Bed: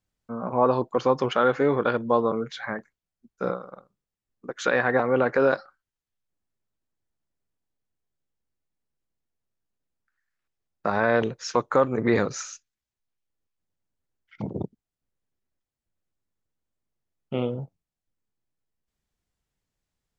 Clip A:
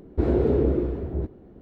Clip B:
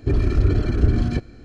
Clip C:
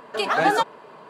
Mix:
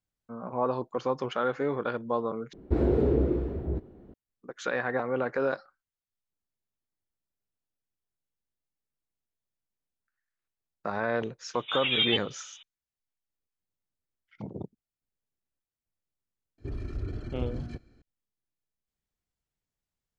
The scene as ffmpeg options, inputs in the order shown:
-filter_complex "[0:a]volume=-7.5dB[a];[3:a]lowpass=f=3.4k:t=q:w=0.5098,lowpass=f=3.4k:t=q:w=0.6013,lowpass=f=3.4k:t=q:w=0.9,lowpass=f=3.4k:t=q:w=2.563,afreqshift=-4000[b];[a]asplit=2[c][d];[c]atrim=end=2.534[e];[1:a]atrim=end=1.61,asetpts=PTS-STARTPTS,volume=-3dB[f];[d]atrim=start=4.136[g];[b]atrim=end=1.09,asetpts=PTS-STARTPTS,volume=-7.5dB,afade=t=in:d=0.004:c=hsin,afade=t=out:st=1.086:d=0.004:c=hsin,adelay=508914S[h];[2:a]atrim=end=1.44,asetpts=PTS-STARTPTS,volume=-17dB,afade=t=in:d=0.004:c=hsin,afade=t=out:st=1.436:d=0.004:c=hsin,adelay=16580[i];[e][f]acrossfade=d=0.004:c1=hsin:c2=hsin[j];[j][g]acrossfade=d=0.004:c1=hsin:c2=hsin[k];[k][h][i]amix=inputs=3:normalize=0"

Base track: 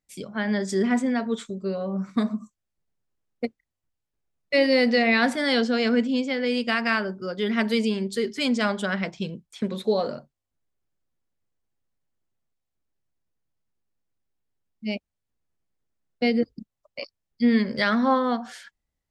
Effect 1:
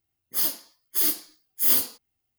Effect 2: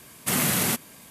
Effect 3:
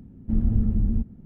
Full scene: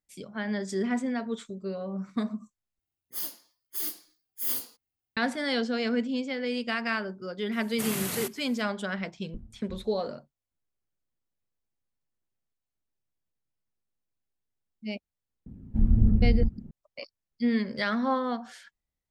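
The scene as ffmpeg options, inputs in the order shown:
-filter_complex "[3:a]asplit=2[a][b];[0:a]volume=-6dB[c];[a]aeval=exprs='val(0)*pow(10,-35*if(lt(mod(2.8*n/s,1),2*abs(2.8)/1000),1-mod(2.8*n/s,1)/(2*abs(2.8)/1000),(mod(2.8*n/s,1)-2*abs(2.8)/1000)/(1-2*abs(2.8)/1000))/20)':c=same[d];[b]aphaser=in_gain=1:out_gain=1:delay=1.3:decay=0.35:speed=1.6:type=triangular[e];[c]asplit=2[f][g];[f]atrim=end=2.794[h];[1:a]atrim=end=2.38,asetpts=PTS-STARTPTS,volume=-10dB[i];[g]atrim=start=5.166[j];[2:a]atrim=end=1.1,asetpts=PTS-STARTPTS,volume=-9.5dB,afade=t=in:d=0.004:c=hsin,afade=t=out:st=1.096:d=0.004:c=hsin,adelay=7520[k];[d]atrim=end=1.25,asetpts=PTS-STARTPTS,volume=-16dB,afade=t=in:d=0.004:c=hsin,afade=t=out:st=1.246:d=0.004:c=hsin,adelay=396018S[l];[e]atrim=end=1.25,asetpts=PTS-STARTPTS,volume=-2.5dB,afade=t=in:d=0.004:c=hsin,afade=t=out:st=1.246:d=0.004:c=hsin,adelay=15460[m];[h][i]acrossfade=d=0.004:c1=hsin:c2=hsin[n];[n][j]acrossfade=d=0.004:c1=hsin:c2=hsin[o];[o][k][l][m]amix=inputs=4:normalize=0"

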